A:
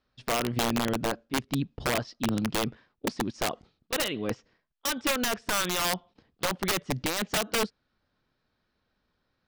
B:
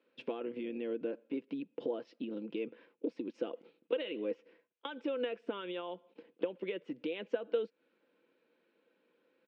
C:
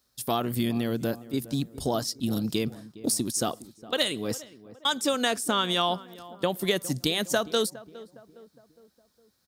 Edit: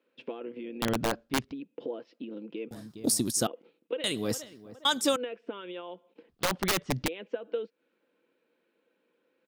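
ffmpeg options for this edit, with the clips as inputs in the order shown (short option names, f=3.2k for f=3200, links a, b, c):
-filter_complex "[0:a]asplit=2[a][b];[2:a]asplit=2[c][d];[1:a]asplit=5[e][f][g][h][i];[e]atrim=end=0.822[j];[a]atrim=start=0.818:end=1.522[k];[f]atrim=start=1.518:end=2.712[l];[c]atrim=start=2.708:end=3.472[m];[g]atrim=start=3.468:end=4.042[n];[d]atrim=start=4.038:end=5.162[o];[h]atrim=start=5.158:end=6.292[p];[b]atrim=start=6.288:end=7.082[q];[i]atrim=start=7.078[r];[j][k]acrossfade=d=0.004:c1=hsin:c2=hsin[s];[s][l]acrossfade=d=0.004:c1=hsin:c2=hsin[t];[t][m]acrossfade=d=0.004:c1=hsin:c2=hsin[u];[u][n]acrossfade=d=0.004:c1=hsin:c2=hsin[v];[v][o]acrossfade=d=0.004:c1=hsin:c2=hsin[w];[w][p]acrossfade=d=0.004:c1=hsin:c2=hsin[x];[x][q]acrossfade=d=0.004:c1=hsin:c2=hsin[y];[y][r]acrossfade=d=0.004:c1=hsin:c2=hsin"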